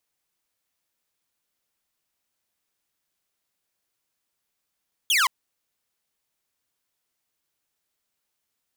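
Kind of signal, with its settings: laser zap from 3.5 kHz, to 950 Hz, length 0.17 s saw, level -15 dB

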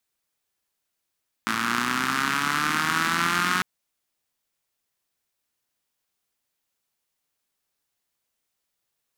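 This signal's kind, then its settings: four-cylinder engine model, changing speed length 2.15 s, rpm 3300, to 5500, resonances 240/1300 Hz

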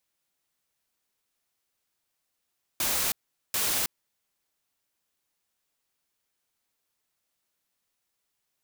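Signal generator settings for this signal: noise bursts white, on 0.32 s, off 0.42 s, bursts 2, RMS -27 dBFS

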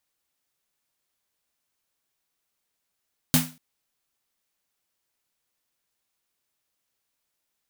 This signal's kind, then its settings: snare drum length 0.24 s, tones 160 Hz, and 250 Hz, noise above 510 Hz, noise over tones -0.5 dB, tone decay 0.32 s, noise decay 0.31 s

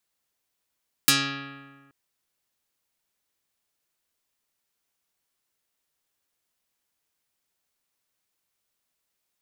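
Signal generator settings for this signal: plucked string C#3, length 0.83 s, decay 1.55 s, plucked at 0.27, dark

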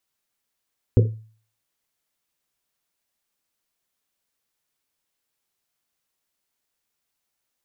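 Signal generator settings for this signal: Risset drum, pitch 110 Hz, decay 0.46 s, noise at 430 Hz, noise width 160 Hz, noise 20%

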